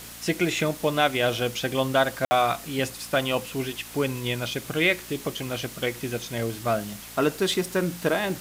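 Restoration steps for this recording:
click removal
hum removal 57.2 Hz, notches 5
ambience match 0:02.25–0:02.31
broadband denoise 29 dB, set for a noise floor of −41 dBFS

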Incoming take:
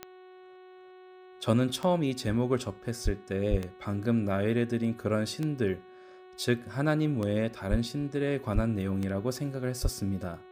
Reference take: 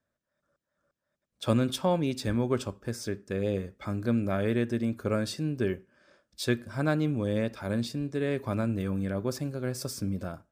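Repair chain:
click removal
hum removal 369.5 Hz, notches 11
high-pass at the plosives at 0:03.04/0:03.50/0:07.70/0:08.54/0:09.82

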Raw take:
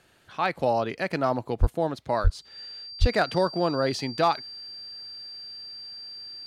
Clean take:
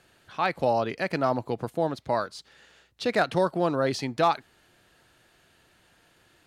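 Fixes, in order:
notch filter 4,700 Hz, Q 30
high-pass at the plosives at 0:01.60/0:02.23/0:03.00

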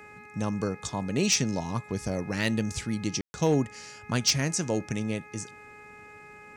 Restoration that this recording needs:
clipped peaks rebuilt −15.5 dBFS
hum removal 419 Hz, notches 6
ambience match 0:03.21–0:03.34

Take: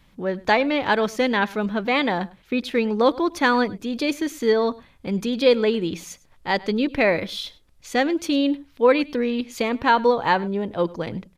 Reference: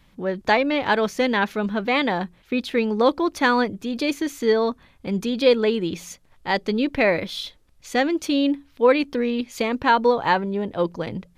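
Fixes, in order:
echo removal 102 ms −21.5 dB

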